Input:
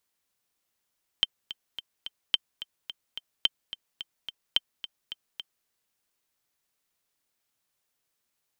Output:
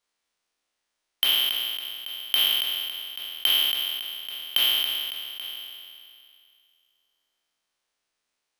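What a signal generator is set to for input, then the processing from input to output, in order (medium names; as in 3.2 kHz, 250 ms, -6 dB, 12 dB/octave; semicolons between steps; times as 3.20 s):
metronome 216 bpm, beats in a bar 4, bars 4, 3.12 kHz, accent 14.5 dB -8 dBFS
spectral sustain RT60 2.40 s; peaking EQ 110 Hz -11.5 dB 1.8 oct; careless resampling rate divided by 3×, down filtered, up hold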